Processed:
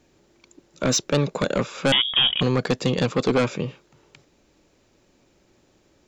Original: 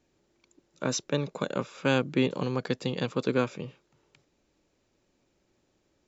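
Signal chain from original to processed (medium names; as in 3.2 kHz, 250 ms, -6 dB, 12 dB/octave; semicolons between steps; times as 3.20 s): in parallel at -8 dB: sine folder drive 12 dB, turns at -10 dBFS; 1.92–2.41 s: on the sum: frequency inversion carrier 3.5 kHz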